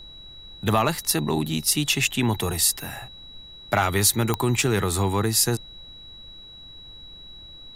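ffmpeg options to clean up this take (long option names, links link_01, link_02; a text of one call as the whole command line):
ffmpeg -i in.wav -af "adeclick=threshold=4,bandreject=frequency=3900:width=30,afftdn=noise_reduction=26:noise_floor=-44" out.wav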